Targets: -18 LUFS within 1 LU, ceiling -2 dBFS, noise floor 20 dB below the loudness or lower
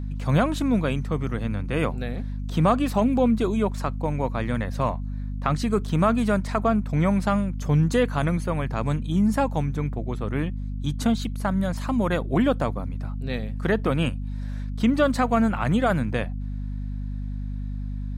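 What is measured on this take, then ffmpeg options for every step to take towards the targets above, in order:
hum 50 Hz; highest harmonic 250 Hz; hum level -27 dBFS; loudness -25.0 LUFS; peak level -6.0 dBFS; loudness target -18.0 LUFS
-> -af "bandreject=f=50:t=h:w=6,bandreject=f=100:t=h:w=6,bandreject=f=150:t=h:w=6,bandreject=f=200:t=h:w=6,bandreject=f=250:t=h:w=6"
-af "volume=2.24,alimiter=limit=0.794:level=0:latency=1"

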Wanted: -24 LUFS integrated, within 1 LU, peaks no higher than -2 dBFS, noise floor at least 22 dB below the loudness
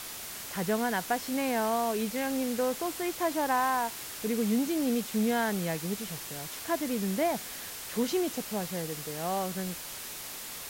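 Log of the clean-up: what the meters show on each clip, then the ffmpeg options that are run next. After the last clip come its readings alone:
noise floor -41 dBFS; noise floor target -53 dBFS; loudness -31.0 LUFS; peak level -16.0 dBFS; loudness target -24.0 LUFS
-> -af "afftdn=nr=12:nf=-41"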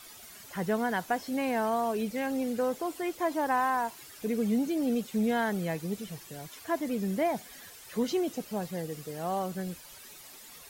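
noise floor -50 dBFS; noise floor target -54 dBFS
-> -af "afftdn=nr=6:nf=-50"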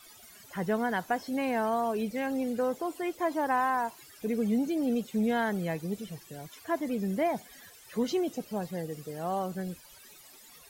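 noise floor -54 dBFS; loudness -31.5 LUFS; peak level -16.5 dBFS; loudness target -24.0 LUFS
-> -af "volume=2.37"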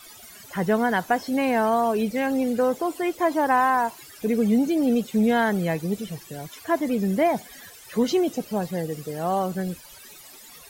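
loudness -24.0 LUFS; peak level -9.0 dBFS; noise floor -46 dBFS

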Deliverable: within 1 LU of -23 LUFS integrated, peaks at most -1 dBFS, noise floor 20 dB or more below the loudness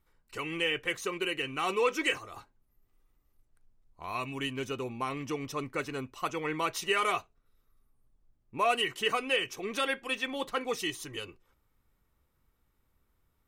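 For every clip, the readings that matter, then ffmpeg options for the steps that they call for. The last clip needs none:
loudness -32.0 LUFS; peak level -15.0 dBFS; loudness target -23.0 LUFS
-> -af "volume=2.82"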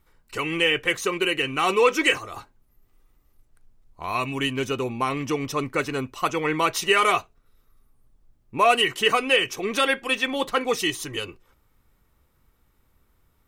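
loudness -23.0 LUFS; peak level -6.0 dBFS; noise floor -65 dBFS

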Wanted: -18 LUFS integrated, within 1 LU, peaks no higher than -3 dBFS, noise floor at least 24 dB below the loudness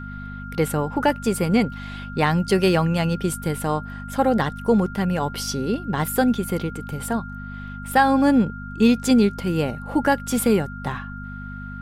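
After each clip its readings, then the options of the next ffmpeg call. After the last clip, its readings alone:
hum 50 Hz; highest harmonic 250 Hz; hum level -33 dBFS; steady tone 1.4 kHz; tone level -37 dBFS; loudness -22.0 LUFS; peak level -5.5 dBFS; loudness target -18.0 LUFS
-> -af "bandreject=f=50:t=h:w=4,bandreject=f=100:t=h:w=4,bandreject=f=150:t=h:w=4,bandreject=f=200:t=h:w=4,bandreject=f=250:t=h:w=4"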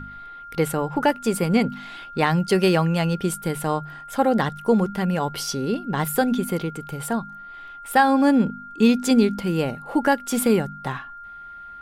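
hum not found; steady tone 1.4 kHz; tone level -37 dBFS
-> -af "bandreject=f=1400:w=30"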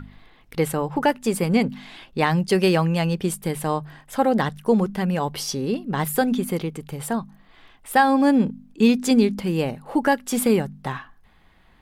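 steady tone not found; loudness -22.0 LUFS; peak level -6.0 dBFS; loudness target -18.0 LUFS
-> -af "volume=1.58,alimiter=limit=0.708:level=0:latency=1"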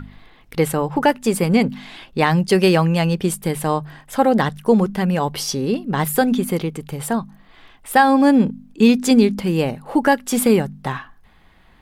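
loudness -18.5 LUFS; peak level -3.0 dBFS; noise floor -51 dBFS

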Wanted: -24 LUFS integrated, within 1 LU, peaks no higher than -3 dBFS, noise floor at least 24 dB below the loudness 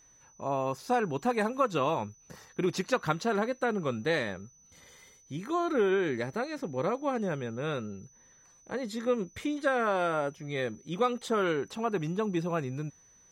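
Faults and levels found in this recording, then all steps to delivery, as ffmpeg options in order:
steady tone 6 kHz; tone level -58 dBFS; loudness -31.0 LUFS; peak level -13.0 dBFS; loudness target -24.0 LUFS
-> -af "bandreject=f=6000:w=30"
-af "volume=2.24"

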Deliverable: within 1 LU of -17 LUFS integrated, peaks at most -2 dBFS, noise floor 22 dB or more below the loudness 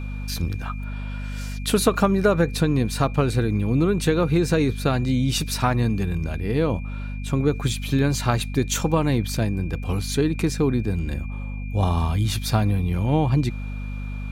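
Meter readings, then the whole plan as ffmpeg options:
hum 50 Hz; highest harmonic 250 Hz; hum level -28 dBFS; steady tone 2.4 kHz; tone level -43 dBFS; loudness -23.5 LUFS; peak level -5.0 dBFS; loudness target -17.0 LUFS
-> -af "bandreject=f=50:t=h:w=6,bandreject=f=100:t=h:w=6,bandreject=f=150:t=h:w=6,bandreject=f=200:t=h:w=6,bandreject=f=250:t=h:w=6"
-af "bandreject=f=2400:w=30"
-af "volume=2.11,alimiter=limit=0.794:level=0:latency=1"

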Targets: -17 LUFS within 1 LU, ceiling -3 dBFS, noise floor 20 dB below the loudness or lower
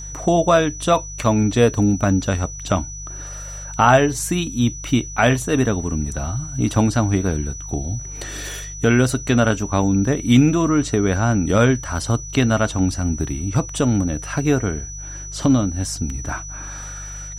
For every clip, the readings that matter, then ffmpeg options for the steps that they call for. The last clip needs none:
hum 50 Hz; highest harmonic 150 Hz; hum level -33 dBFS; steady tone 5.9 kHz; tone level -33 dBFS; loudness -19.5 LUFS; peak level -1.5 dBFS; loudness target -17.0 LUFS
-> -af "bandreject=f=50:t=h:w=4,bandreject=f=100:t=h:w=4,bandreject=f=150:t=h:w=4"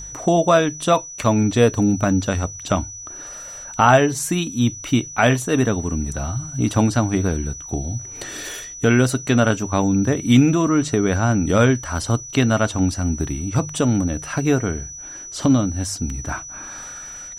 hum not found; steady tone 5.9 kHz; tone level -33 dBFS
-> -af "bandreject=f=5900:w=30"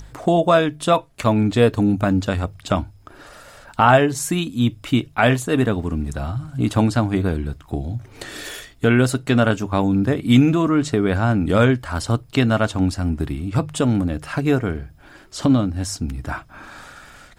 steady tone not found; loudness -19.5 LUFS; peak level -1.5 dBFS; loudness target -17.0 LUFS
-> -af "volume=1.33,alimiter=limit=0.708:level=0:latency=1"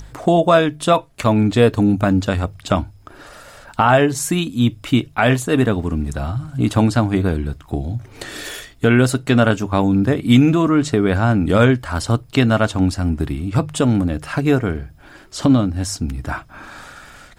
loudness -17.5 LUFS; peak level -3.0 dBFS; noise floor -46 dBFS

